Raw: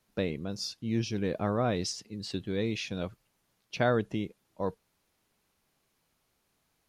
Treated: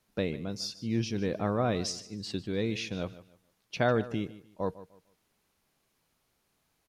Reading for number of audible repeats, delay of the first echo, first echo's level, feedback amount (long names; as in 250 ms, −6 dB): 2, 150 ms, −16.5 dB, 27%